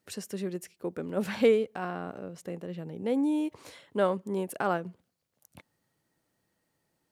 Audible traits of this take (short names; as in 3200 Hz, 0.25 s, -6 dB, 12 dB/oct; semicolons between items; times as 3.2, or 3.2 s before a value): noise floor -80 dBFS; spectral tilt -4.0 dB/oct